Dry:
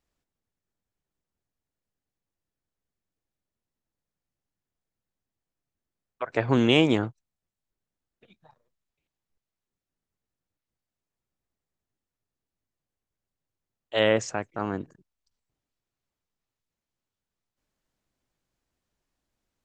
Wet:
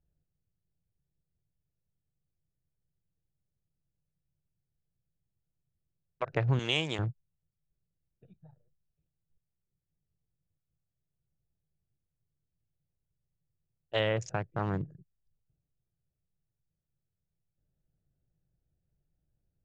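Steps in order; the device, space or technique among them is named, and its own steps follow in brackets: local Wiener filter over 41 samples; jukebox (low-pass 7.5 kHz 12 dB/octave; resonant low shelf 190 Hz +6 dB, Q 3; compression 3:1, threshold -27 dBFS, peak gain reduction 10.5 dB); 6.59–6.99 s: RIAA curve recording

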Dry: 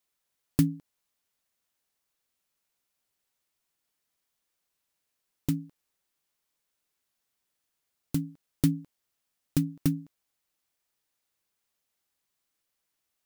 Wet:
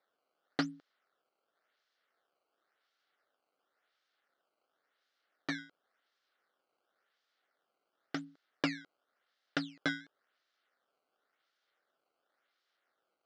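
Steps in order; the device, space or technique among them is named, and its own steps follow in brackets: circuit-bent sampling toy (decimation with a swept rate 14×, swing 160% 0.93 Hz; cabinet simulation 540–4800 Hz, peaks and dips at 960 Hz -10 dB, 1.4 kHz +5 dB, 2.5 kHz -7 dB); trim +2.5 dB

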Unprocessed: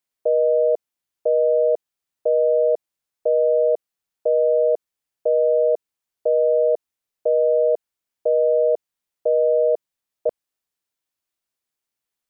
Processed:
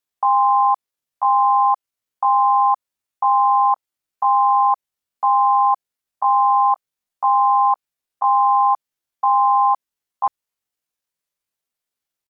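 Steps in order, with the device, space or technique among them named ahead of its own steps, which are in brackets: chipmunk voice (pitch shift +9 st); trim +2.5 dB

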